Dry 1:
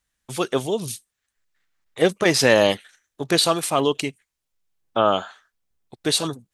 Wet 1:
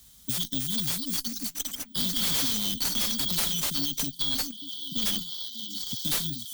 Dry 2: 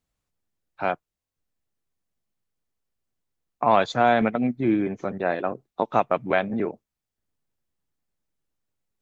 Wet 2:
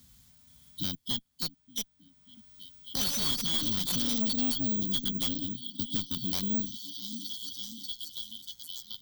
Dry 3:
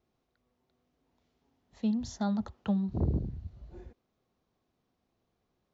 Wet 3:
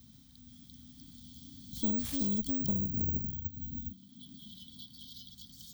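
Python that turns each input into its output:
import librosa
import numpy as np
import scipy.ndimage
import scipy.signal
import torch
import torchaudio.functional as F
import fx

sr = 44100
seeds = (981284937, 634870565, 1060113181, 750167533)

p1 = fx.tracing_dist(x, sr, depth_ms=0.36)
p2 = fx.small_body(p1, sr, hz=(450.0, 2500.0), ring_ms=55, db=18)
p3 = np.clip(p2, -10.0 ** (-12.5 / 20.0), 10.0 ** (-12.5 / 20.0))
p4 = p2 + (p3 * 10.0 ** (-5.0 / 20.0))
p5 = fx.echo_pitch(p4, sr, ms=476, semitones=5, count=3, db_per_echo=-3.0)
p6 = fx.brickwall_bandstop(p5, sr, low_hz=280.0, high_hz=3000.0)
p7 = p6 + fx.echo_stepped(p6, sr, ms=590, hz=520.0, octaves=0.7, feedback_pct=70, wet_db=-8.0, dry=0)
p8 = (np.kron(p7[::2], np.eye(2)[0]) * 2)[:len(p7)]
p9 = fx.dynamic_eq(p8, sr, hz=130.0, q=0.83, threshold_db=-38.0, ratio=4.0, max_db=-6)
p10 = scipy.signal.sosfilt(scipy.signal.butter(2, 42.0, 'highpass', fs=sr, output='sos'), p9)
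p11 = fx.tube_stage(p10, sr, drive_db=21.0, bias=0.45)
y = fx.band_squash(p11, sr, depth_pct=70)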